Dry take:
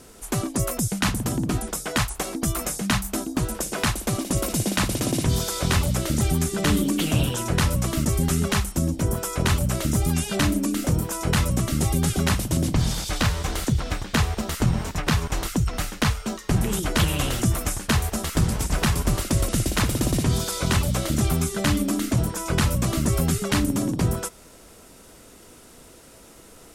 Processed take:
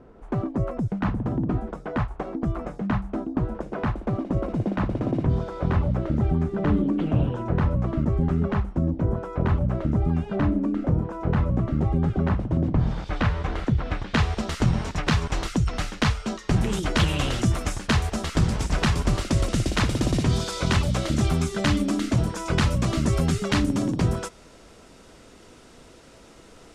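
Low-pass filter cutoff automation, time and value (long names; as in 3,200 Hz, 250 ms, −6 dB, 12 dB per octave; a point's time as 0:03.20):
0:12.69 1,100 Hz
0:13.23 2,100 Hz
0:13.82 2,100 Hz
0:14.37 5,600 Hz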